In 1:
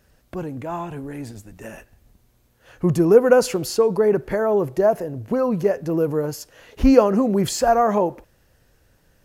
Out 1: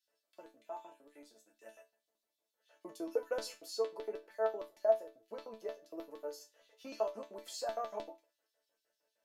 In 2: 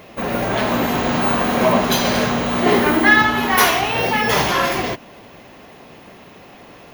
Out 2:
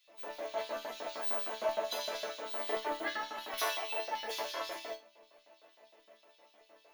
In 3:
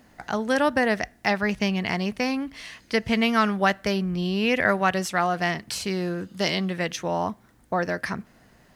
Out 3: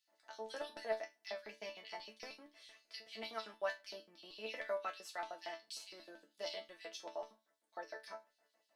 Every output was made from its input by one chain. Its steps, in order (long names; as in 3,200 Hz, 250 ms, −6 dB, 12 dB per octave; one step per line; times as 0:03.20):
auto-filter high-pass square 6.5 Hz 530–3,800 Hz
resonators tuned to a chord A3 sus4, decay 0.23 s
level −5 dB